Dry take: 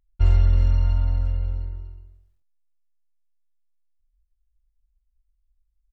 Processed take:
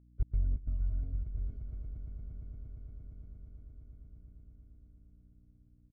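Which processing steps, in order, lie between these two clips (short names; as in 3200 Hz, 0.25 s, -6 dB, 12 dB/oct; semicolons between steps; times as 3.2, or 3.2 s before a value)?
per-bin expansion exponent 1.5; Doppler pass-by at 2, 13 m/s, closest 4.4 m; reverb removal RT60 1.3 s; comb 4.6 ms, depth 61%; bit-crush 11-bit; running mean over 48 samples; step gate "xx.xx.xxx" 134 bpm -60 dB; hum 60 Hz, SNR 23 dB; on a send: swelling echo 0.116 s, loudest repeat 8, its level -14 dB; on the sum: gain +4.5 dB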